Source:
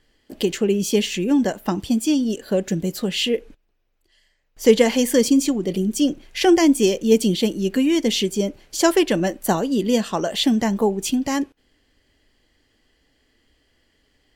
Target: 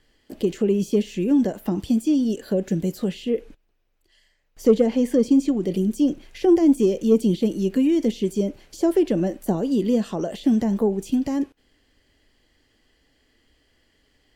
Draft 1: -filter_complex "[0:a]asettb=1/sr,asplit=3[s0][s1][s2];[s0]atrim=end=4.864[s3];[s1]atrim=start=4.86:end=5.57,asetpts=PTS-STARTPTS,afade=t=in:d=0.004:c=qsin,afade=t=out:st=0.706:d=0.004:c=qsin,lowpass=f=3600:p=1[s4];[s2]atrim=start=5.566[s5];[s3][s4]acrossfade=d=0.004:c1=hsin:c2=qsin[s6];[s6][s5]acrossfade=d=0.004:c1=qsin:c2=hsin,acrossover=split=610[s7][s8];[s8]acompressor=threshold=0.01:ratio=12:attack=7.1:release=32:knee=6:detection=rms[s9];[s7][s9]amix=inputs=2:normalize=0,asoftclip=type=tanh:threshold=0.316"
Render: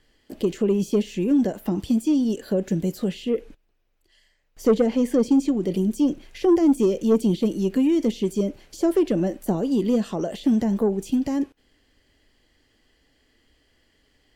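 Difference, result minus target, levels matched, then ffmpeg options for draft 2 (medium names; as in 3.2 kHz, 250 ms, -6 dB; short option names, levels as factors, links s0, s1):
saturation: distortion +11 dB
-filter_complex "[0:a]asettb=1/sr,asplit=3[s0][s1][s2];[s0]atrim=end=4.864[s3];[s1]atrim=start=4.86:end=5.57,asetpts=PTS-STARTPTS,afade=t=in:d=0.004:c=qsin,afade=t=out:st=0.706:d=0.004:c=qsin,lowpass=f=3600:p=1[s4];[s2]atrim=start=5.566[s5];[s3][s4]acrossfade=d=0.004:c1=hsin:c2=qsin[s6];[s6][s5]acrossfade=d=0.004:c1=qsin:c2=hsin,acrossover=split=610[s7][s8];[s8]acompressor=threshold=0.01:ratio=12:attack=7.1:release=32:knee=6:detection=rms[s9];[s7][s9]amix=inputs=2:normalize=0,asoftclip=type=tanh:threshold=0.708"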